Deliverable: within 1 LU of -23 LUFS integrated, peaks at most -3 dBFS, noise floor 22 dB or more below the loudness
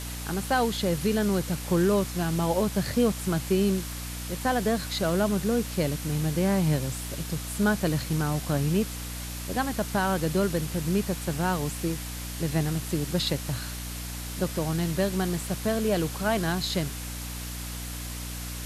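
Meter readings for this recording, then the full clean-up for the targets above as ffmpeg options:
hum 60 Hz; harmonics up to 300 Hz; hum level -34 dBFS; noise floor -36 dBFS; noise floor target -50 dBFS; loudness -28.0 LUFS; peak -12.5 dBFS; loudness target -23.0 LUFS
-> -af "bandreject=f=60:t=h:w=4,bandreject=f=120:t=h:w=4,bandreject=f=180:t=h:w=4,bandreject=f=240:t=h:w=4,bandreject=f=300:t=h:w=4"
-af "afftdn=nr=14:nf=-36"
-af "volume=5dB"

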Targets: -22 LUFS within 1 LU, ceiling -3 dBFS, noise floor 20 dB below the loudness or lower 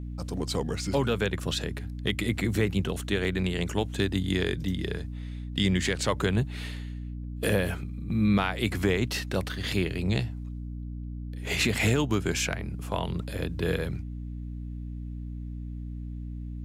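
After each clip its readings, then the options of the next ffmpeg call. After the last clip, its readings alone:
hum 60 Hz; harmonics up to 300 Hz; hum level -34 dBFS; loudness -29.5 LUFS; peak -13.0 dBFS; loudness target -22.0 LUFS
-> -af "bandreject=f=60:t=h:w=4,bandreject=f=120:t=h:w=4,bandreject=f=180:t=h:w=4,bandreject=f=240:t=h:w=4,bandreject=f=300:t=h:w=4"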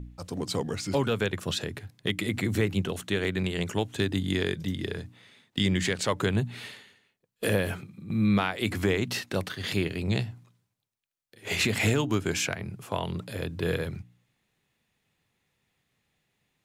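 hum none; loudness -29.0 LUFS; peak -13.0 dBFS; loudness target -22.0 LUFS
-> -af "volume=7dB"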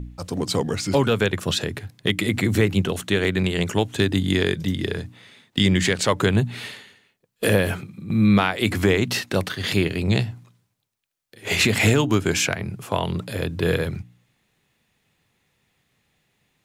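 loudness -22.0 LUFS; peak -6.0 dBFS; noise floor -73 dBFS

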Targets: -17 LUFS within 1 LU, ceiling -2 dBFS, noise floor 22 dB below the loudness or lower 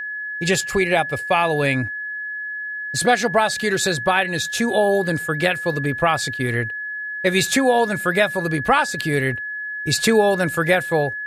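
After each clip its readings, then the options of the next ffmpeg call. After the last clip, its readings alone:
steady tone 1700 Hz; tone level -26 dBFS; loudness -20.0 LUFS; peak -3.5 dBFS; loudness target -17.0 LUFS
-> -af "bandreject=f=1.7k:w=30"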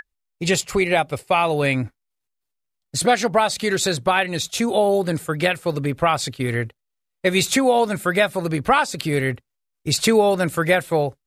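steady tone none; loudness -20.5 LUFS; peak -4.0 dBFS; loudness target -17.0 LUFS
-> -af "volume=3.5dB,alimiter=limit=-2dB:level=0:latency=1"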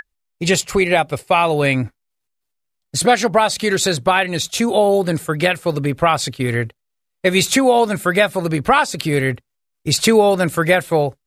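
loudness -17.0 LUFS; peak -2.0 dBFS; noise floor -76 dBFS

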